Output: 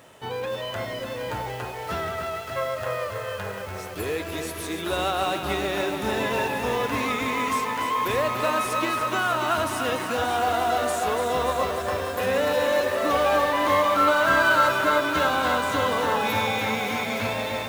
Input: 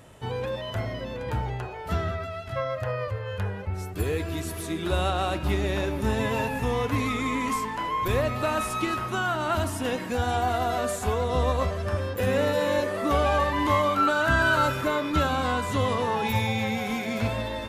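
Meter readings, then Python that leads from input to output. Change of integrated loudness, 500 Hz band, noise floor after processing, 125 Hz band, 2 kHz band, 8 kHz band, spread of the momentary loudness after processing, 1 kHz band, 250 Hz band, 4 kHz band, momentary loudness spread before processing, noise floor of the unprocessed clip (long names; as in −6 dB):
+2.5 dB, +2.5 dB, −34 dBFS, −8.0 dB, +4.0 dB, +3.5 dB, 11 LU, +3.5 dB, −1.5 dB, +4.0 dB, 9 LU, −35 dBFS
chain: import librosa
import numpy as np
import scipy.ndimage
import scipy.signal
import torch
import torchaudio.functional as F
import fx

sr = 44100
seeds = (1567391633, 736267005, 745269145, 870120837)

p1 = fx.highpass(x, sr, hz=420.0, slope=6)
p2 = fx.peak_eq(p1, sr, hz=11000.0, db=-3.0, octaves=0.77)
p3 = fx.notch(p2, sr, hz=7400.0, q=22.0)
p4 = 10.0 ** (-23.5 / 20.0) * np.tanh(p3 / 10.0 ** (-23.5 / 20.0))
p5 = p3 + (p4 * librosa.db_to_amplitude(-6.0))
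p6 = fx.quant_companded(p5, sr, bits=6)
y = fx.echo_crushed(p6, sr, ms=291, feedback_pct=80, bits=7, wet_db=-7.0)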